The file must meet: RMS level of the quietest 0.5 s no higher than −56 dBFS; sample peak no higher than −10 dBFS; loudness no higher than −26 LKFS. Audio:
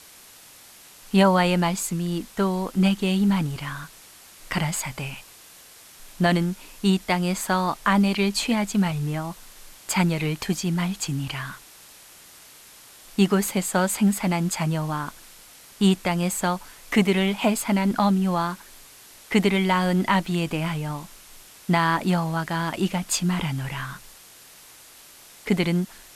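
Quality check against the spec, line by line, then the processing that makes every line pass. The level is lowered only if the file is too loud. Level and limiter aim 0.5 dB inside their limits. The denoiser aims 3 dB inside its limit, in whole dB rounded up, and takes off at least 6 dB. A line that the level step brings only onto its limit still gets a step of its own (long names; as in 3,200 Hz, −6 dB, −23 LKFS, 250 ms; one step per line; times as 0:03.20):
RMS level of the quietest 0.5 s −48 dBFS: out of spec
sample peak −7.0 dBFS: out of spec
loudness −23.5 LKFS: out of spec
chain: broadband denoise 8 dB, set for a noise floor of −48 dBFS
level −3 dB
brickwall limiter −10.5 dBFS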